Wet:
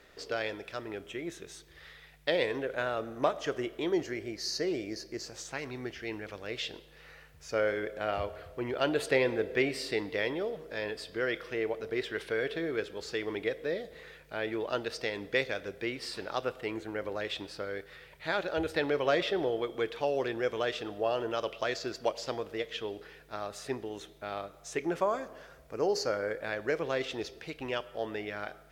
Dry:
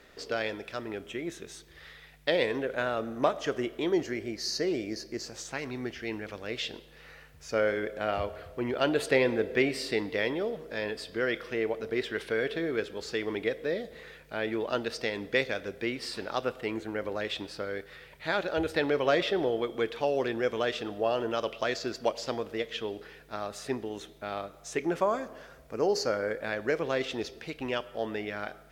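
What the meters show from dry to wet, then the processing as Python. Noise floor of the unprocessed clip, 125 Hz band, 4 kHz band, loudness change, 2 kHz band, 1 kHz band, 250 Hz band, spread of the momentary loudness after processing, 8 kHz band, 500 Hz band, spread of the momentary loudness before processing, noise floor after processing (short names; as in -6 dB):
-54 dBFS, -2.5 dB, -2.0 dB, -2.5 dB, -2.0 dB, -2.0 dB, -3.5 dB, 11 LU, -2.0 dB, -2.0 dB, 11 LU, -56 dBFS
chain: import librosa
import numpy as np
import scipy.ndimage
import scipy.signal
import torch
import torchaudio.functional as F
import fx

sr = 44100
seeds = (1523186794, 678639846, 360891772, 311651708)

y = fx.peak_eq(x, sr, hz=230.0, db=-5.5, octaves=0.37)
y = y * 10.0 ** (-2.0 / 20.0)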